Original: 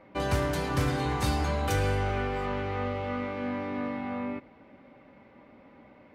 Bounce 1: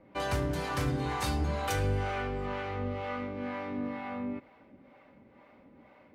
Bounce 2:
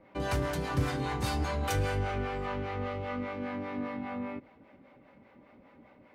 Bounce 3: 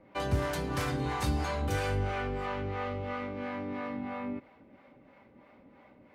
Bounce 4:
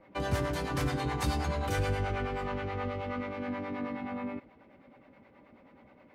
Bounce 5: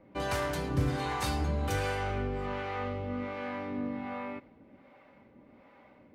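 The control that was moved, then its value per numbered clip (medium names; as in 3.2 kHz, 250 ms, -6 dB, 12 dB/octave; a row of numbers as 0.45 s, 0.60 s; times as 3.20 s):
harmonic tremolo, rate: 2.1 Hz, 5 Hz, 3 Hz, 9.4 Hz, 1.3 Hz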